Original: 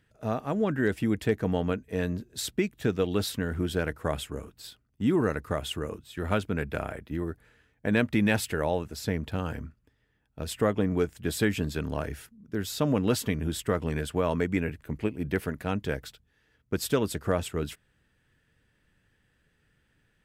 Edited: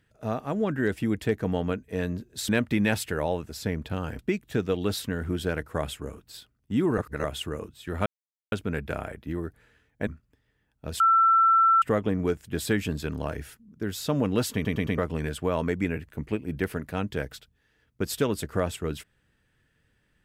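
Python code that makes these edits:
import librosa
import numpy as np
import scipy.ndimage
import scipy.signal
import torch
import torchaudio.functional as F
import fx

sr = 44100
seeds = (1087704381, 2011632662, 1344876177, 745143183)

y = fx.edit(x, sr, fx.reverse_span(start_s=5.28, length_s=0.26),
    fx.insert_silence(at_s=6.36, length_s=0.46),
    fx.move(start_s=7.91, length_s=1.7, to_s=2.49),
    fx.insert_tone(at_s=10.54, length_s=0.82, hz=1340.0, db=-16.0),
    fx.stutter_over(start_s=13.26, slice_s=0.11, count=4), tone=tone)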